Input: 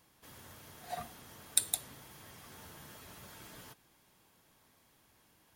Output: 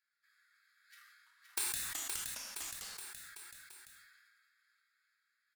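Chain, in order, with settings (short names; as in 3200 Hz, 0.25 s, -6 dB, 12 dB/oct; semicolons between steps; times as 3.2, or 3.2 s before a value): Wiener smoothing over 15 samples; steep high-pass 1400 Hz 72 dB/oct; bell 4800 Hz +5.5 dB 0.2 oct; wrapped overs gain 19 dB; flange 0.43 Hz, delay 1.2 ms, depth 2.2 ms, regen -67%; bouncing-ball echo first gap 0.52 s, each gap 0.9×, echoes 5; two-slope reverb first 0.43 s, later 1.8 s, from -25 dB, DRR 2.5 dB; 1.03–3.11 echoes that change speed 0.233 s, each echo -4 st, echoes 3, each echo -6 dB; sustainer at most 29 dB/s; gain -1.5 dB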